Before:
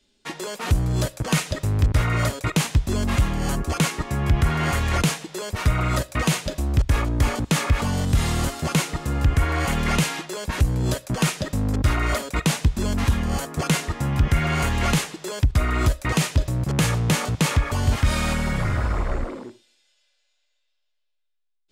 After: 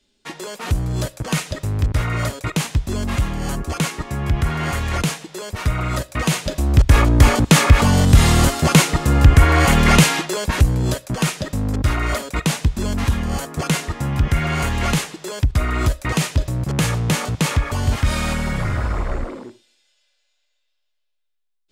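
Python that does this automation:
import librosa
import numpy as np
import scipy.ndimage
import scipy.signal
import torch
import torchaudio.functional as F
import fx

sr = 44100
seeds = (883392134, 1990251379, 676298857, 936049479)

y = fx.gain(x, sr, db=fx.line((6.08, 0.0), (7.02, 9.0), (10.24, 9.0), (11.02, 1.5)))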